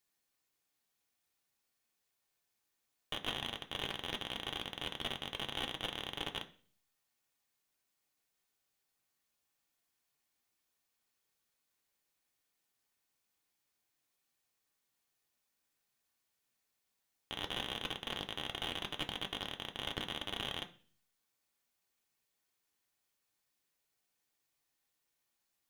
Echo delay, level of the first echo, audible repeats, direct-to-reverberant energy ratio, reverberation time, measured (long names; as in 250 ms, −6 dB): no echo audible, no echo audible, no echo audible, 3.5 dB, 0.45 s